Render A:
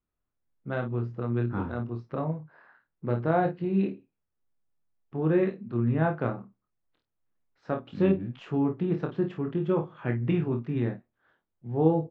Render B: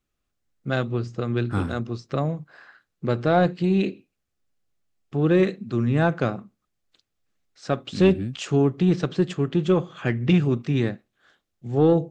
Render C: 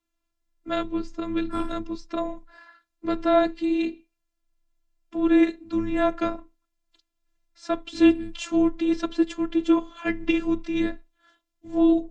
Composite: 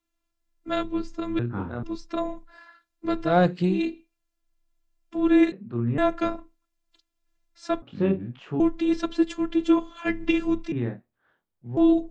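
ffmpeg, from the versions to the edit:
-filter_complex "[0:a]asplit=4[a][b][c][d];[2:a]asplit=6[e][f][g][h][i][j];[e]atrim=end=1.392[k];[a]atrim=start=1.388:end=1.832[l];[f]atrim=start=1.828:end=3.37[m];[1:a]atrim=start=3.21:end=3.82[n];[g]atrim=start=3.66:end=5.522[o];[b]atrim=start=5.518:end=5.982[p];[h]atrim=start=5.978:end=7.822[q];[c]atrim=start=7.818:end=8.602[r];[i]atrim=start=8.598:end=10.722[s];[d]atrim=start=10.718:end=11.772[t];[j]atrim=start=11.768[u];[k][l]acrossfade=d=0.004:c1=hsin:c2=hsin[v];[v][m]acrossfade=d=0.004:c1=hsin:c2=hsin[w];[w][n]acrossfade=d=0.16:c1=tri:c2=tri[x];[x][o]acrossfade=d=0.16:c1=tri:c2=tri[y];[y][p]acrossfade=d=0.004:c1=hsin:c2=hsin[z];[z][q]acrossfade=d=0.004:c1=hsin:c2=hsin[aa];[aa][r]acrossfade=d=0.004:c1=hsin:c2=hsin[ab];[ab][s]acrossfade=d=0.004:c1=hsin:c2=hsin[ac];[ac][t]acrossfade=d=0.004:c1=hsin:c2=hsin[ad];[ad][u]acrossfade=d=0.004:c1=hsin:c2=hsin"

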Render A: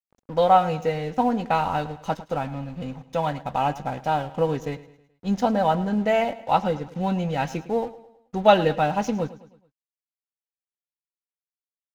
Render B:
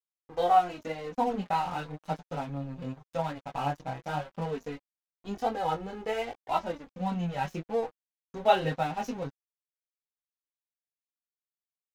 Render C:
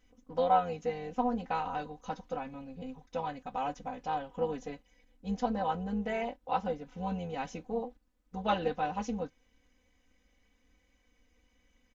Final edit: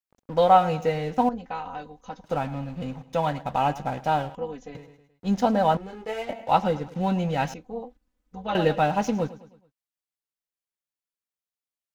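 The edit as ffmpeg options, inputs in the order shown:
-filter_complex "[2:a]asplit=3[a][b][c];[0:a]asplit=5[d][e][f][g][h];[d]atrim=end=1.292[i];[a]atrim=start=1.288:end=2.242[j];[e]atrim=start=2.238:end=4.352[k];[b]atrim=start=4.348:end=4.752[l];[f]atrim=start=4.748:end=5.772[m];[1:a]atrim=start=5.768:end=6.292[n];[g]atrim=start=6.288:end=7.542[o];[c]atrim=start=7.538:end=8.552[p];[h]atrim=start=8.548[q];[i][j]acrossfade=d=0.004:c1=hsin:c2=hsin[r];[r][k]acrossfade=d=0.004:c1=hsin:c2=hsin[s];[s][l]acrossfade=d=0.004:c1=hsin:c2=hsin[t];[t][m]acrossfade=d=0.004:c1=hsin:c2=hsin[u];[u][n]acrossfade=d=0.004:c1=hsin:c2=hsin[v];[v][o]acrossfade=d=0.004:c1=hsin:c2=hsin[w];[w][p]acrossfade=d=0.004:c1=hsin:c2=hsin[x];[x][q]acrossfade=d=0.004:c1=hsin:c2=hsin"

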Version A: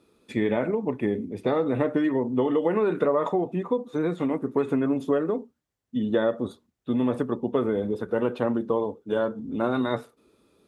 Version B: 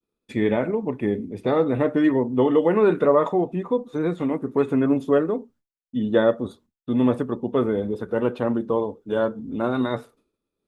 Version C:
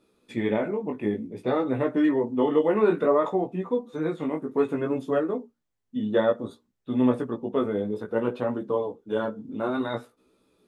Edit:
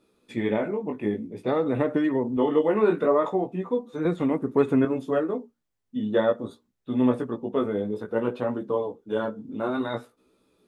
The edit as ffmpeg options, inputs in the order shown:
-filter_complex "[2:a]asplit=3[a][b][c];[a]atrim=end=1.492[d];[0:a]atrim=start=1.488:end=2.372[e];[b]atrim=start=2.368:end=4.052[f];[1:a]atrim=start=4.048:end=4.852[g];[c]atrim=start=4.848[h];[d][e]acrossfade=d=0.004:c1=hsin:c2=hsin[i];[i][f]acrossfade=d=0.004:c1=hsin:c2=hsin[j];[j][g]acrossfade=d=0.004:c1=hsin:c2=hsin[k];[k][h]acrossfade=d=0.004:c1=hsin:c2=hsin"

